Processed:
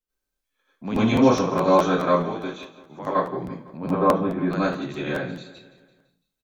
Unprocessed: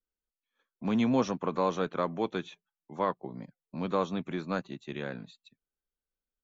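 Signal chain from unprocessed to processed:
0:02.14–0:03.07: downward compressor 4 to 1, threshold −37 dBFS, peak gain reduction 11.5 dB
0:03.77–0:04.46: low-pass filter 1,500 Hz 12 dB per octave
repeating echo 168 ms, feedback 52%, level −16 dB
convolution reverb RT60 0.35 s, pre-delay 78 ms, DRR −9.5 dB
regular buffer underruns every 0.21 s, samples 512, repeat, from 0:00.52

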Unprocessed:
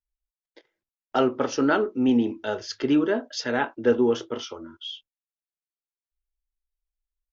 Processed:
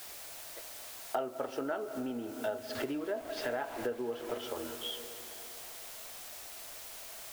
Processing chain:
0:02.75–0:04.38: linear delta modulator 64 kbit/s, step −31 dBFS
low-pass filter 3,000 Hz
background noise white −47 dBFS
parametric band 660 Hz +10 dB 0.4 octaves
convolution reverb RT60 2.9 s, pre-delay 115 ms, DRR 14.5 dB
downward compressor 8 to 1, threshold −31 dBFS, peak gain reduction 18 dB
parametric band 190 Hz −7 dB 1.4 octaves

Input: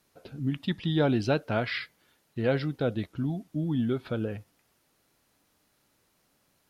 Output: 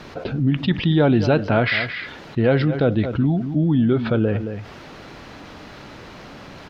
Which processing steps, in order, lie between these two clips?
high-frequency loss of the air 210 metres
slap from a distant wall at 38 metres, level −17 dB
envelope flattener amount 50%
level +8 dB

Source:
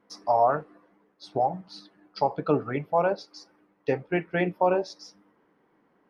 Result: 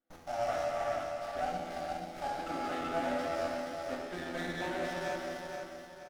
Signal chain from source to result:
low-shelf EQ 350 Hz −9.5 dB
in parallel at −9.5 dB: fuzz pedal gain 47 dB, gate −49 dBFS
on the sum: high-frequency loss of the air 52 metres
phaser with its sweep stopped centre 660 Hz, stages 8
tuned comb filter 83 Hz, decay 0.63 s, harmonics all, mix 90%
on a send: repeating echo 476 ms, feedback 38%, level −4.5 dB
on the sum: reverb whose tail is shaped and stops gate 500 ms flat, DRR −2.5 dB
windowed peak hold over 9 samples
level −3.5 dB

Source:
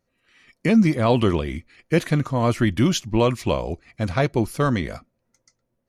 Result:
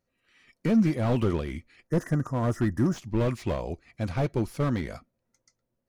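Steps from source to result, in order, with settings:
gain on a spectral selection 0:01.88–0:02.97, 2,000–4,900 Hz −30 dB
slew-rate limiting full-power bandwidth 71 Hz
level −5.5 dB

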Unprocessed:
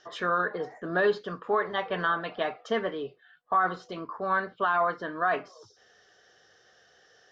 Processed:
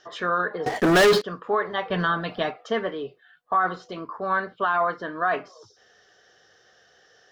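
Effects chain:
0:00.66–0:01.22: leveller curve on the samples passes 5
0:01.90–0:02.51: bass and treble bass +11 dB, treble +10 dB
level +2.5 dB

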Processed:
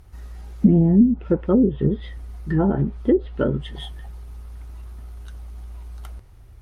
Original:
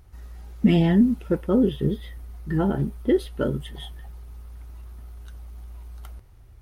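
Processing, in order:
treble cut that deepens with the level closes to 440 Hz, closed at −15 dBFS
level +3.5 dB

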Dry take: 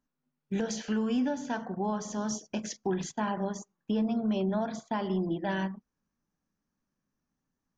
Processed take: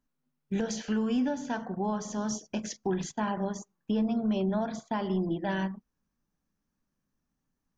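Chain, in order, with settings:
low-shelf EQ 78 Hz +7 dB

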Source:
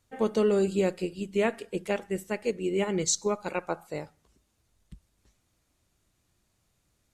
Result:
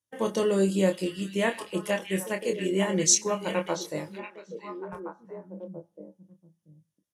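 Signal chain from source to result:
high-pass filter 96 Hz
high-shelf EQ 6,400 Hz +11 dB
double-tracking delay 26 ms −6 dB
noise gate −50 dBFS, range −21 dB
EQ curve with evenly spaced ripples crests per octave 1.2, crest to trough 7 dB
echo through a band-pass that steps 685 ms, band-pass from 2,800 Hz, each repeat −1.4 octaves, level −4 dB

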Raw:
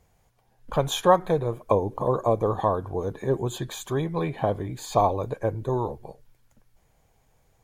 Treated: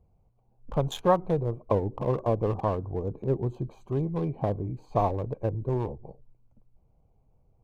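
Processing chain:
adaptive Wiener filter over 25 samples
low-shelf EQ 350 Hz +7.5 dB
level −6 dB

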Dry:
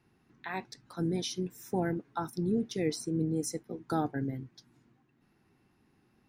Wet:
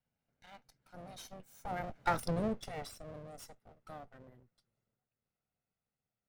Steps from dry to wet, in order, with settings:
lower of the sound and its delayed copy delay 1.4 ms
source passing by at 0:02.17, 16 m/s, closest 2 metres
level +6.5 dB

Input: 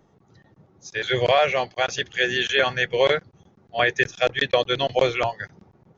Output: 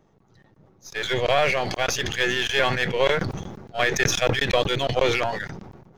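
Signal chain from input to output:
gain on one half-wave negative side −7 dB
level that may fall only so fast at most 42 dB per second

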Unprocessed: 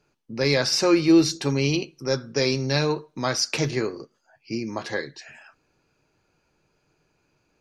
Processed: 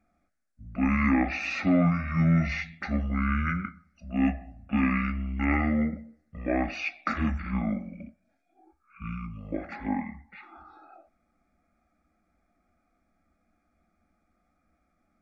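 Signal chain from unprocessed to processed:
phaser with its sweep stopped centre 1,300 Hz, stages 8
wrong playback speed 15 ips tape played at 7.5 ips

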